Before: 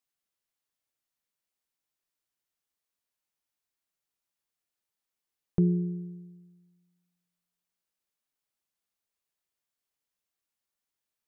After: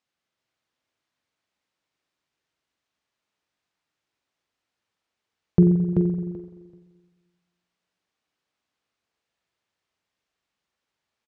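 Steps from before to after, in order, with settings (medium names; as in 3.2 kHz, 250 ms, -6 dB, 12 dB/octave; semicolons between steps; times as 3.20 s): high-pass 55 Hz; distance through air 110 m; on a send: feedback delay 384 ms, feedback 17%, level -4 dB; on the sum: spring tank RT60 1.4 s, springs 43 ms, chirp 25 ms, DRR 5.5 dB; trim +9 dB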